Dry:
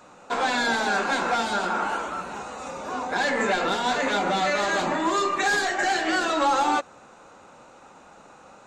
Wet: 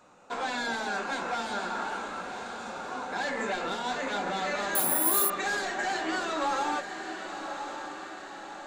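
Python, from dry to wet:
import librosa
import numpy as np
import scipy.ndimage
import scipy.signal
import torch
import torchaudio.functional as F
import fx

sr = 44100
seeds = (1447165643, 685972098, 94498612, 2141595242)

y = fx.echo_diffused(x, sr, ms=1087, feedback_pct=56, wet_db=-8.0)
y = fx.resample_bad(y, sr, factor=4, down='none', up='zero_stuff', at=(4.75, 5.3))
y = F.gain(torch.from_numpy(y), -8.0).numpy()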